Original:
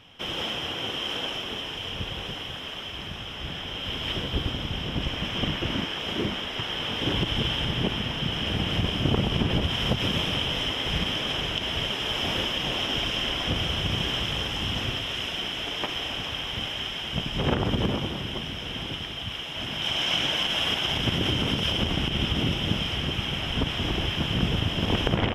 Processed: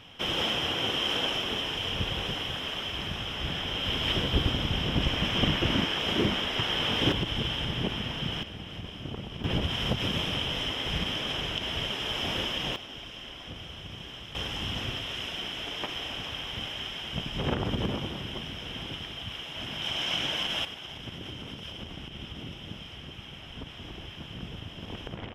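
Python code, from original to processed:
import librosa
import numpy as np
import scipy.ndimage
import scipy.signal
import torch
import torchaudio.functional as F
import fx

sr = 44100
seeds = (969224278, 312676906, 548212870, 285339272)

y = fx.gain(x, sr, db=fx.steps((0.0, 2.0), (7.12, -4.0), (8.43, -14.0), (9.44, -3.5), (12.76, -15.0), (14.35, -4.5), (20.65, -15.0)))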